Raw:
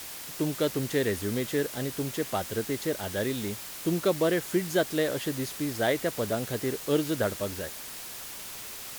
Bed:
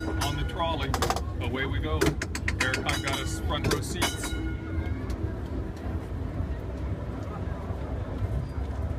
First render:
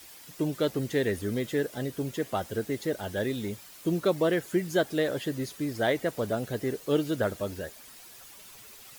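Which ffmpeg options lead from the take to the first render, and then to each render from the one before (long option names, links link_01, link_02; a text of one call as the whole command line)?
ffmpeg -i in.wav -af "afftdn=noise_reduction=11:noise_floor=-41" out.wav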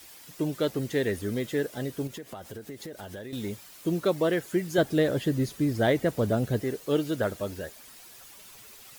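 ffmpeg -i in.wav -filter_complex "[0:a]asettb=1/sr,asplit=3[link_01][link_02][link_03];[link_01]atrim=end=2.074[link_04];[link_02]atrim=start=2.07:end=3.33,asetpts=PTS-STARTPTS,afade=type=in:duration=0.004:curve=qsin,afade=type=out:start_time=1.256:duration=0.004:curve=qsin,acompressor=threshold=-36dB:ratio=10:attack=3.2:release=140:knee=1:detection=peak[link_05];[link_03]atrim=start=3.326[link_06];[link_04][link_05]acrossfade=duration=0.004:curve1=hsin:curve2=qsin[link_07];[link_07][link_06]acrossfade=duration=0.004:curve1=qsin:curve2=hsin,asettb=1/sr,asplit=3[link_08][link_09][link_10];[link_08]atrim=end=4.784[link_11];[link_09]atrim=start=4.78:end=6.61,asetpts=PTS-STARTPTS,afade=type=in:duration=0.004:curve=qsin,afade=type=out:start_time=1.826:duration=0.004:curve=qsin,lowshelf=frequency=300:gain=10[link_12];[link_10]atrim=start=6.606[link_13];[link_11][link_12]acrossfade=duration=0.004:curve1=hsin:curve2=qsin[link_14];[link_14][link_13]acrossfade=duration=0.004:curve1=qsin:curve2=hsin" out.wav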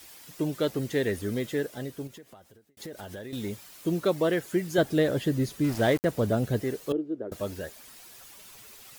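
ffmpeg -i in.wav -filter_complex "[0:a]asettb=1/sr,asplit=3[link_01][link_02][link_03];[link_01]atrim=end=5.644[link_04];[link_02]atrim=start=5.64:end=6.05,asetpts=PTS-STARTPTS,afade=type=in:duration=0.004:curve=qsin,afade=type=out:start_time=0.406:duration=0.004:curve=qsin,aeval=exprs='val(0)*gte(abs(val(0)),0.0237)':channel_layout=same[link_05];[link_03]atrim=start=6.046[link_06];[link_04][link_05]acrossfade=duration=0.004:curve1=hsin:curve2=qsin[link_07];[link_07][link_06]acrossfade=duration=0.004:curve1=qsin:curve2=hsin,asettb=1/sr,asplit=3[link_08][link_09][link_10];[link_08]atrim=end=6.924[link_11];[link_09]atrim=start=6.92:end=7.32,asetpts=PTS-STARTPTS,afade=type=in:duration=0.004:curve=qsin,afade=type=out:start_time=0.396:duration=0.004:curve=qsin,bandpass=frequency=350:width_type=q:width=3.1[link_12];[link_10]atrim=start=7.316[link_13];[link_11][link_12]acrossfade=duration=0.004:curve1=hsin:curve2=qsin[link_14];[link_14][link_13]acrossfade=duration=0.004:curve1=qsin:curve2=hsin,asplit=2[link_15][link_16];[link_15]atrim=end=2.77,asetpts=PTS-STARTPTS,afade=type=out:start_time=1.43:duration=1.34[link_17];[link_16]atrim=start=2.77,asetpts=PTS-STARTPTS,afade=type=in:duration=0.004:curve=hsin[link_18];[link_17][link_18]concat=n=2:v=0:a=1" out.wav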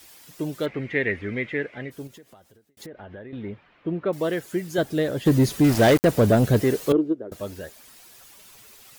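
ffmpeg -i in.wav -filter_complex "[0:a]asplit=3[link_01][link_02][link_03];[link_01]afade=type=out:start_time=0.65:duration=0.02[link_04];[link_02]lowpass=frequency=2200:width_type=q:width=6.9,afade=type=in:start_time=0.65:duration=0.02,afade=type=out:start_time=1.9:duration=0.02[link_05];[link_03]afade=type=in:start_time=1.9:duration=0.02[link_06];[link_04][link_05][link_06]amix=inputs=3:normalize=0,asettb=1/sr,asplit=3[link_07][link_08][link_09];[link_07]atrim=end=2.864[link_10];[link_08]atrim=start=2.86:end=4.13,asetpts=PTS-STARTPTS,afade=type=in:duration=0.004:curve=qsin,afade=type=out:start_time=1.266:duration=0.004:curve=qsin,lowpass=frequency=2500:width=0.5412,lowpass=frequency=2500:width=1.3066[link_11];[link_09]atrim=start=4.126[link_12];[link_10][link_11]acrossfade=duration=0.004:curve1=hsin:curve2=qsin[link_13];[link_13][link_12]acrossfade=duration=0.004:curve1=qsin:curve2=hsin,asplit=3[link_14][link_15][link_16];[link_14]afade=type=out:start_time=5.25:duration=0.02[link_17];[link_15]aeval=exprs='0.282*sin(PI/2*2*val(0)/0.282)':channel_layout=same,afade=type=in:start_time=5.25:duration=0.02,afade=type=out:start_time=7.12:duration=0.02[link_18];[link_16]afade=type=in:start_time=7.12:duration=0.02[link_19];[link_17][link_18][link_19]amix=inputs=3:normalize=0" out.wav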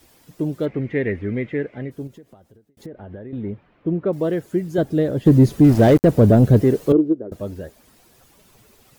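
ffmpeg -i in.wav -af "tiltshelf=frequency=800:gain=7.5" out.wav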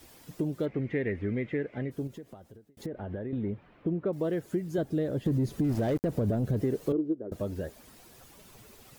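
ffmpeg -i in.wav -af "alimiter=limit=-9.5dB:level=0:latency=1:release=48,acompressor=threshold=-31dB:ratio=2.5" out.wav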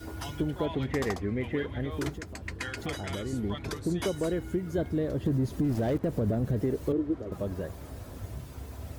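ffmpeg -i in.wav -i bed.wav -filter_complex "[1:a]volume=-10dB[link_01];[0:a][link_01]amix=inputs=2:normalize=0" out.wav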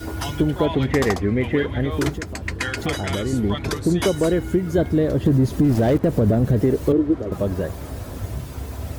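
ffmpeg -i in.wav -af "volume=10.5dB" out.wav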